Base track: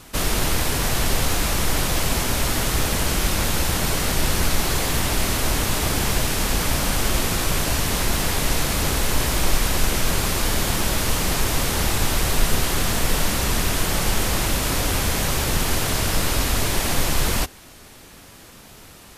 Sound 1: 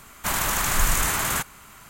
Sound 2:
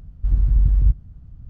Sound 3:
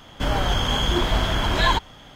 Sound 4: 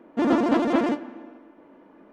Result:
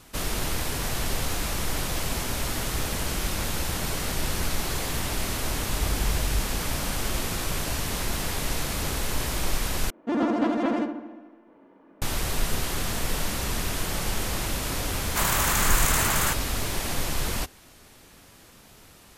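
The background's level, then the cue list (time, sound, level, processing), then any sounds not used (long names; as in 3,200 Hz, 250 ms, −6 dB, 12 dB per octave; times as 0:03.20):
base track −7 dB
0:05.49: mix in 2 −12 dB
0:09.90: overwrite with 4 −4 dB + feedback echo with a low-pass in the loop 69 ms, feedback 59%, level −7 dB
0:14.91: mix in 1 −0.5 dB
not used: 3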